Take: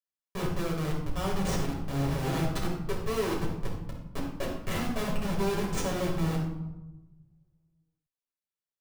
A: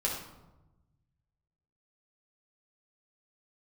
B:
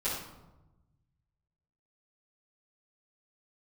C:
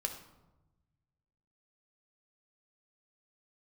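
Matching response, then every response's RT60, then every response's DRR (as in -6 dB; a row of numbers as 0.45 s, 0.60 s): A; 1.0 s, 1.0 s, 1.0 s; -4.5 dB, -14.5 dB, 4.0 dB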